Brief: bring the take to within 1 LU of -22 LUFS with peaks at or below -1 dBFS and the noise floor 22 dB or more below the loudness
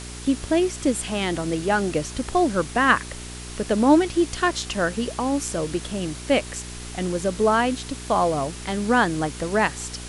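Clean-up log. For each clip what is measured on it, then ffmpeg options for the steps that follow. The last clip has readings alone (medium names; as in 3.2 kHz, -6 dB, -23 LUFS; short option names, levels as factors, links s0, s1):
hum 60 Hz; highest harmonic 420 Hz; hum level -36 dBFS; noise floor -36 dBFS; noise floor target -45 dBFS; loudness -23.0 LUFS; peak level -4.5 dBFS; loudness target -22.0 LUFS
-> -af "bandreject=f=60:t=h:w=4,bandreject=f=120:t=h:w=4,bandreject=f=180:t=h:w=4,bandreject=f=240:t=h:w=4,bandreject=f=300:t=h:w=4,bandreject=f=360:t=h:w=4,bandreject=f=420:t=h:w=4"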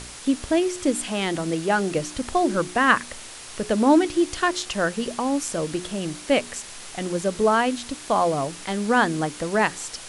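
hum not found; noise floor -40 dBFS; noise floor target -46 dBFS
-> -af "afftdn=nr=6:nf=-40"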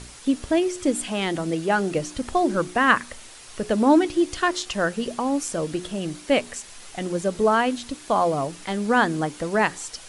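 noise floor -44 dBFS; noise floor target -46 dBFS
-> -af "afftdn=nr=6:nf=-44"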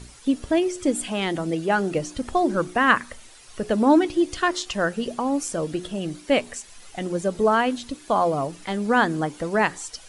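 noise floor -47 dBFS; loudness -23.5 LUFS; peak level -4.0 dBFS; loudness target -22.0 LUFS
-> -af "volume=1.19"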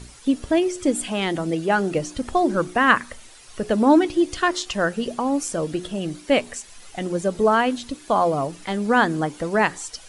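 loudness -22.0 LUFS; peak level -2.5 dBFS; noise floor -46 dBFS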